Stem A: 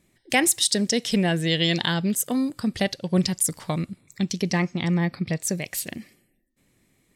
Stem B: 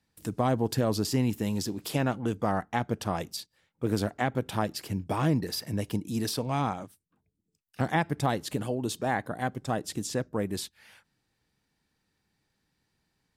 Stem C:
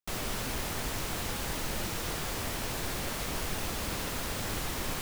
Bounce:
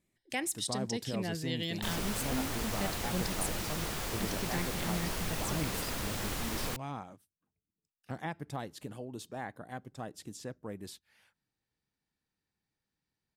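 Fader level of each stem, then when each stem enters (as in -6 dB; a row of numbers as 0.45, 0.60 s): -14.5, -12.0, -2.0 dB; 0.00, 0.30, 1.75 s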